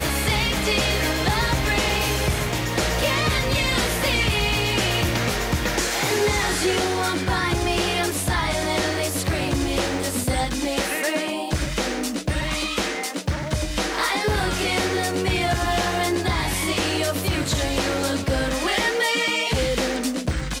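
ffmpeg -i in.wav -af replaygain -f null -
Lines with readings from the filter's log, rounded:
track_gain = +4.1 dB
track_peak = 0.206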